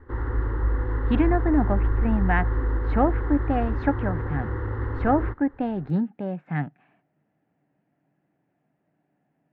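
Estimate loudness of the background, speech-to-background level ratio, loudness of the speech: -27.5 LUFS, 1.0 dB, -26.5 LUFS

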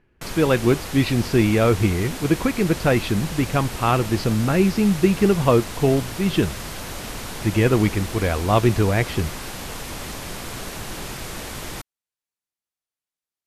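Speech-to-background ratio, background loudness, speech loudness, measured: 11.5 dB, -32.0 LUFS, -20.5 LUFS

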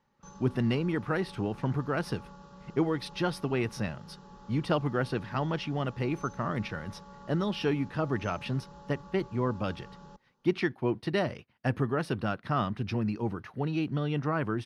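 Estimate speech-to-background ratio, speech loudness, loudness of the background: 19.0 dB, -31.5 LUFS, -50.5 LUFS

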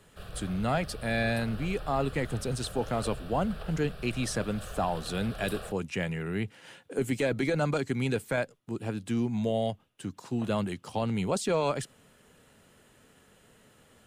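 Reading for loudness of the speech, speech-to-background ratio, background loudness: -31.5 LUFS, 12.0 dB, -43.5 LUFS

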